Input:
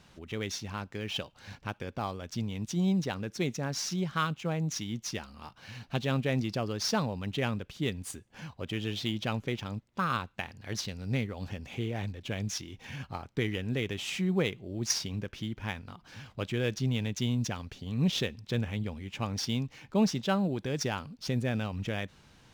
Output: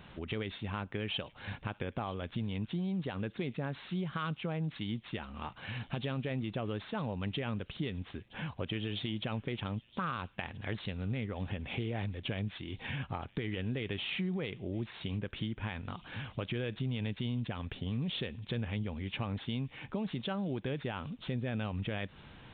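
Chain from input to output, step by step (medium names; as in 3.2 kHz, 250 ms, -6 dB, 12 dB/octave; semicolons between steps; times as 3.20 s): peak limiter -25 dBFS, peak gain reduction 9.5 dB; compression 3:1, threshold -41 dBFS, peak gain reduction 10 dB; on a send: feedback echo behind a high-pass 968 ms, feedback 46%, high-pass 2.9 kHz, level -18 dB; on the sum: resampled via 8 kHz; trim +6 dB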